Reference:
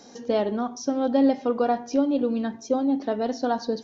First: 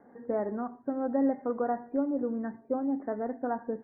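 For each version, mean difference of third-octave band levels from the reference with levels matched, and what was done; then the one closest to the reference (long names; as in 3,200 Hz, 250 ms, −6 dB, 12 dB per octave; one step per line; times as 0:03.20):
3.5 dB: Butterworth low-pass 2,000 Hz 96 dB per octave
level −7 dB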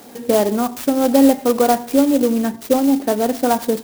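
7.5 dB: converter with an unsteady clock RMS 0.058 ms
level +8 dB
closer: first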